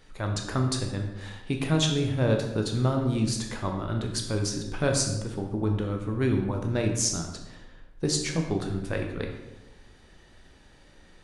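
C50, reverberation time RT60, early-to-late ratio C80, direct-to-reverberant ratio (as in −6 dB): 5.5 dB, 1.0 s, 7.5 dB, 2.5 dB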